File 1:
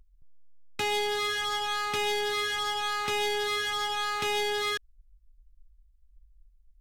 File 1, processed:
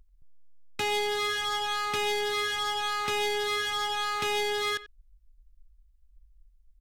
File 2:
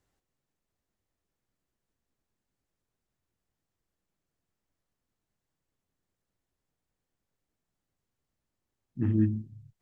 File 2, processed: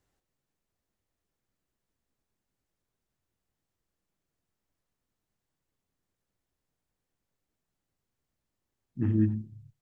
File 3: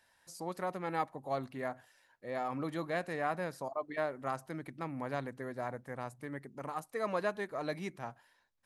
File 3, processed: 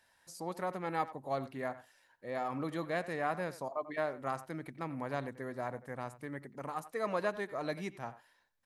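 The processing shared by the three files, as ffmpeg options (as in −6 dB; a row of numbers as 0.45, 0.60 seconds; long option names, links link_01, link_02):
-filter_complex "[0:a]asplit=2[link_01][link_02];[link_02]adelay=90,highpass=300,lowpass=3400,asoftclip=type=hard:threshold=-23.5dB,volume=-15dB[link_03];[link_01][link_03]amix=inputs=2:normalize=0"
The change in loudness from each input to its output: 0.0, 0.0, 0.0 LU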